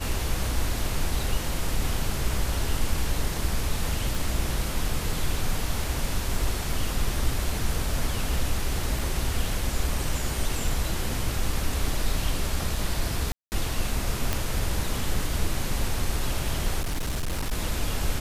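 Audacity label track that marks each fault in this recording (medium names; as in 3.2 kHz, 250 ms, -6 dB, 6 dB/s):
4.150000	4.150000	pop
8.990000	8.990000	dropout 2.5 ms
13.320000	13.520000	dropout 199 ms
14.330000	14.330000	pop
16.800000	17.530000	clipped -24 dBFS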